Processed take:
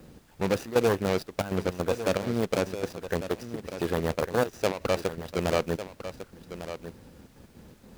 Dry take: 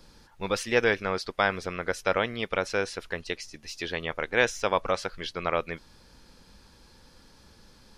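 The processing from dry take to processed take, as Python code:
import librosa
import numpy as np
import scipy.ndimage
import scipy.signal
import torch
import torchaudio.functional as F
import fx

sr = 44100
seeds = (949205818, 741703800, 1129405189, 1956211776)

p1 = scipy.ndimage.median_filter(x, 41, mode='constant')
p2 = scipy.signal.sosfilt(scipy.signal.butter(2, 76.0, 'highpass', fs=sr, output='sos'), p1)
p3 = fx.high_shelf(p2, sr, hz=5200.0, db=5.5)
p4 = fx.over_compress(p3, sr, threshold_db=-36.0, ratio=-1.0)
p5 = p3 + (p4 * 10.0 ** (-3.0 / 20.0))
p6 = fx.step_gate(p5, sr, bpm=159, pattern='xx.xxxx.xxxxx.x.', floor_db=-12.0, edge_ms=4.5)
p7 = fx.dmg_noise_colour(p6, sr, seeds[0], colour='pink', level_db=-65.0)
p8 = p7 + fx.echo_single(p7, sr, ms=1151, db=-11.5, dry=0)
y = p8 * 10.0 ** (3.5 / 20.0)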